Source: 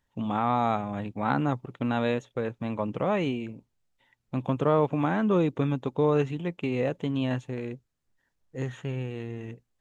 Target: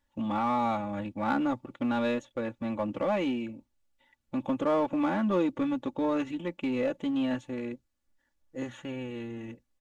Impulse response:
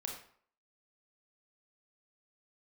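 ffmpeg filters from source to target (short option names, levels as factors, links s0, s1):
-filter_complex "[0:a]aecho=1:1:3.5:0.86,asplit=2[s0][s1];[s1]asoftclip=type=hard:threshold=0.0473,volume=0.501[s2];[s0][s2]amix=inputs=2:normalize=0,volume=0.473"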